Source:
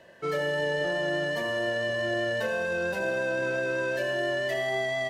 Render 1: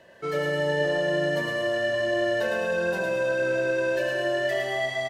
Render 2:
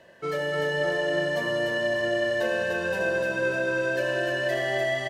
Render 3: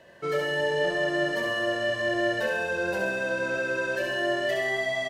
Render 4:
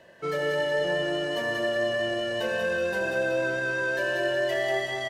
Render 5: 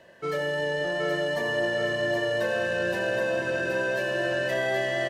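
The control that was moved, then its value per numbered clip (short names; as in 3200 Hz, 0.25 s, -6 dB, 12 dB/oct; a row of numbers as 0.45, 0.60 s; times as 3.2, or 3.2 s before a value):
feedback echo, time: 109, 298, 66, 186, 773 ms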